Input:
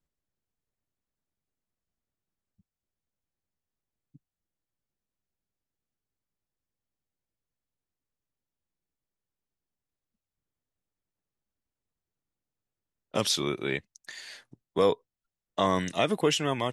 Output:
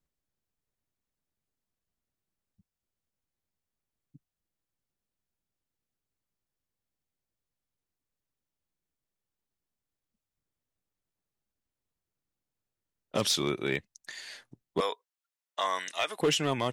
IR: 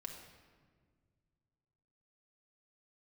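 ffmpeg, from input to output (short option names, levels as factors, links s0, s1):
-filter_complex "[0:a]asettb=1/sr,asplit=3[s0][s1][s2];[s0]atrim=end=14.804[s3];[s1]atrim=start=14.8:end=16.19,asetpts=PTS-STARTPTS,afade=t=in:d=0.004:c=qsin,afade=t=out:st=1.386:d=0.004:c=qsin,highpass=910[s4];[s2]atrim=start=16.186[s5];[s3][s4]acrossfade=d=0.004:c1=hsin:c2=qsin[s6];[s6][s5]acrossfade=d=0.004:c1=qsin:c2=hsin,asoftclip=type=hard:threshold=0.106"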